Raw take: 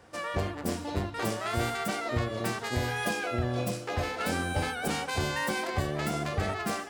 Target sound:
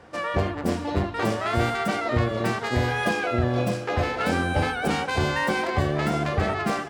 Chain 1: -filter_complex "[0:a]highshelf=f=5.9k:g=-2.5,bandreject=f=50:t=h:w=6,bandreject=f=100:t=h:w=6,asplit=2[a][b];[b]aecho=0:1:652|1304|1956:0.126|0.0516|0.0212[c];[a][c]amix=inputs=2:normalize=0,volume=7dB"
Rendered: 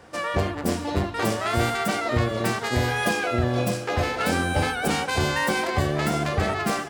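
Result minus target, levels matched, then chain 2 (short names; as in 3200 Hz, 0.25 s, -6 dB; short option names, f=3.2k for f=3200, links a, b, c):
8000 Hz band +6.5 dB
-filter_complex "[0:a]highshelf=f=5.9k:g=-14,bandreject=f=50:t=h:w=6,bandreject=f=100:t=h:w=6,asplit=2[a][b];[b]aecho=0:1:652|1304|1956:0.126|0.0516|0.0212[c];[a][c]amix=inputs=2:normalize=0,volume=7dB"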